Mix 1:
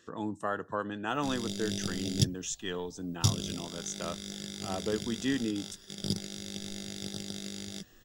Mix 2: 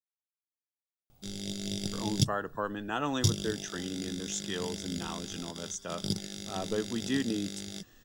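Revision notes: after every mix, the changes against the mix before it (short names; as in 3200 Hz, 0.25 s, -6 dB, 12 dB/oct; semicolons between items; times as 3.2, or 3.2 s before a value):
speech: entry +1.85 s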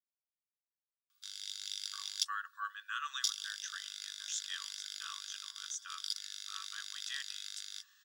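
master: add rippled Chebyshev high-pass 1100 Hz, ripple 6 dB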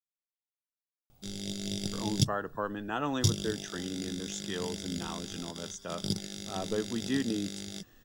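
speech: add high shelf 3700 Hz -7 dB; master: remove rippled Chebyshev high-pass 1100 Hz, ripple 6 dB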